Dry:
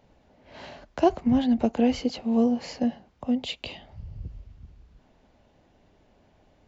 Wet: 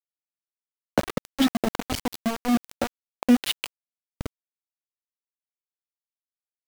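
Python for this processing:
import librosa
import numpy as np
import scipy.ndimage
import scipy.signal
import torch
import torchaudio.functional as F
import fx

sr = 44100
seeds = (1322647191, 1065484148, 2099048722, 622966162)

y = fx.peak_eq(x, sr, hz=260.0, db=13.5, octaves=1.7, at=(0.7, 2.71))
y = fx.dereverb_blind(y, sr, rt60_s=2.0)
y = fx.over_compress(y, sr, threshold_db=-22.0, ratio=-1.0)
y = np.where(np.abs(y) >= 10.0 ** (-20.5 / 20.0), y, 0.0)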